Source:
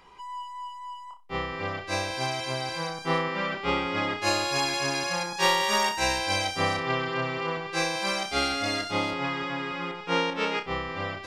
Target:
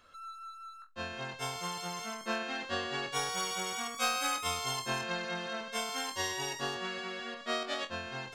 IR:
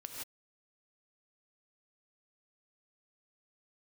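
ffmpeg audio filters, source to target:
-af "asetrate=59535,aresample=44100,volume=0.398"

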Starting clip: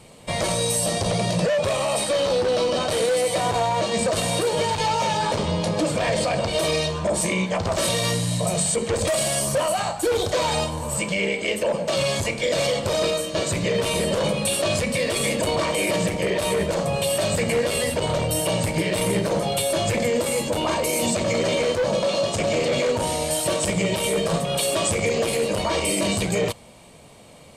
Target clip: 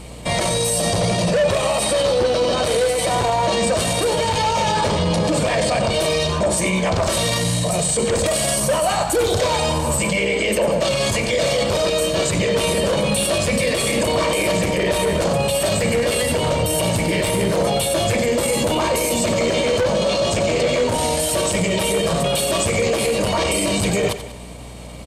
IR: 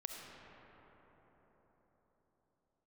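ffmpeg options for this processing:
-filter_complex "[0:a]alimiter=limit=0.1:level=0:latency=1:release=12,asplit=2[s0][s1];[s1]aecho=0:1:105|210|315|420|525:0.266|0.125|0.0588|0.0276|0.013[s2];[s0][s2]amix=inputs=2:normalize=0,atempo=1.1,aeval=exprs='val(0)+0.00562*(sin(2*PI*60*n/s)+sin(2*PI*2*60*n/s)/2+sin(2*PI*3*60*n/s)/3+sin(2*PI*4*60*n/s)/4+sin(2*PI*5*60*n/s)/5)':c=same,volume=2.66"

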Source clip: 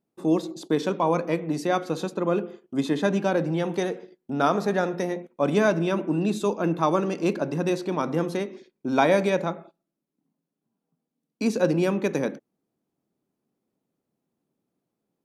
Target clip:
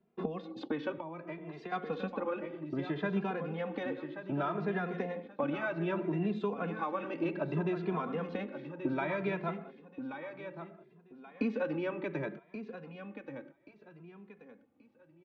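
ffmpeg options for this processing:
-filter_complex "[0:a]acrossover=split=130|1000[s0][s1][s2];[s1]alimiter=limit=0.0944:level=0:latency=1:release=475[s3];[s0][s3][s2]amix=inputs=3:normalize=0,acompressor=threshold=0.0112:ratio=5,lowpass=f=2900:w=0.5412,lowpass=f=2900:w=1.3066,aecho=1:1:1130|2260|3390|4520:0.335|0.107|0.0343|0.011,asettb=1/sr,asplit=3[s4][s5][s6];[s4]atrim=end=0.974[s7];[s5]atrim=start=0.97:end=1.72,asetpts=PTS-STARTPTS,afade=t=in:d=0.004:c=qsin,afade=t=out:st=0.746:d=0.004:c=qsin,acrossover=split=270|540[s8][s9][s10];[s8]acompressor=threshold=0.00112:ratio=4[s11];[s9]acompressor=threshold=0.00224:ratio=4[s12];[s10]acompressor=threshold=0.00251:ratio=4[s13];[s11][s12][s13]amix=inputs=3:normalize=0[s14];[s6]atrim=start=1.716[s15];[s7][s14]acrossfade=d=0.004:c1=hsin:c2=qsin[s16];[s16][s15]acrossfade=d=0.004:c1=qsin:c2=hsin,asplit=2[s17][s18];[s18]adelay=2.5,afreqshift=0.64[s19];[s17][s19]amix=inputs=2:normalize=1,volume=2.82"

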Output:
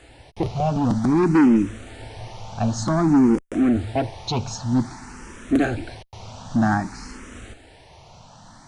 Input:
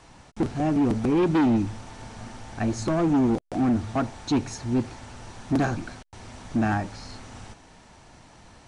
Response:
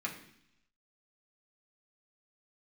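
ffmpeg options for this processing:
-filter_complex "[0:a]asplit=2[s0][s1];[s1]afreqshift=0.53[s2];[s0][s2]amix=inputs=2:normalize=1,volume=2.11"

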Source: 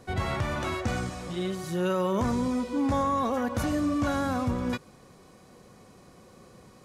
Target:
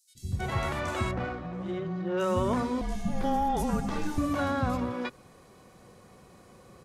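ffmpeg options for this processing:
-filter_complex "[0:a]acrossover=split=240|5300[s0][s1][s2];[s0]adelay=150[s3];[s1]adelay=320[s4];[s3][s4][s2]amix=inputs=3:normalize=0,asettb=1/sr,asplit=3[s5][s6][s7];[s5]atrim=end=1.114[s8];[s6]atrim=start=1.11:end=2.2,asetpts=PTS-STARTPTS,afade=t=in:d=0.004:c=qsin,afade=t=out:st=1.086:d=0.004:c=qsin,adynamicsmooth=sensitivity=2:basefreq=1600[s9];[s7]atrim=start=2.196[s10];[s8][s9]acrossfade=d=0.004:c1=hsin:c2=qsin[s11];[s11][s10]acrossfade=d=0.004:c1=qsin:c2=hsin,asettb=1/sr,asplit=3[s12][s13][s14];[s12]atrim=end=2.814[s15];[s13]atrim=start=2.81:end=4.18,asetpts=PTS-STARTPTS,afade=t=in:d=0.004:c=qsin,afade=t=out:st=1.366:d=0.004:c=qsin,afreqshift=-290[s16];[s14]atrim=start=4.176[s17];[s15][s16]acrossfade=d=0.004:c1=hsin:c2=qsin[s18];[s18][s17]acrossfade=d=0.004:c1=qsin:c2=hsin"

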